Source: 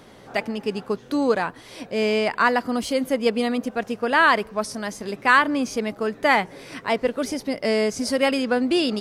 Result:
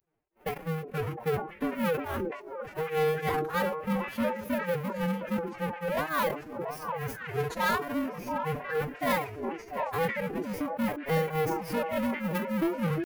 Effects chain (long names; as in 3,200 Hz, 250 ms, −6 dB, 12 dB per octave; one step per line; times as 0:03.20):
each half-wave held at its own peak
camcorder AGC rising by 6 dB per second
downward expander −25 dBFS
flat-topped bell 5,500 Hz −14 dB
flanger 0.25 Hz, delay 1.6 ms, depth 5.4 ms, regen −52%
granular cloud 208 ms, grains 5 per second, spray 22 ms, pitch spread up and down by 0 semitones
ring modulation 110 Hz
echo through a band-pass that steps 240 ms, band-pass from 310 Hz, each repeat 1.4 octaves, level −3.5 dB
tempo change 0.69×
soft clipping −21 dBFS, distortion −12 dB
phase-vocoder pitch shift with formants kept +6.5 semitones
level that may fall only so fast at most 110 dB per second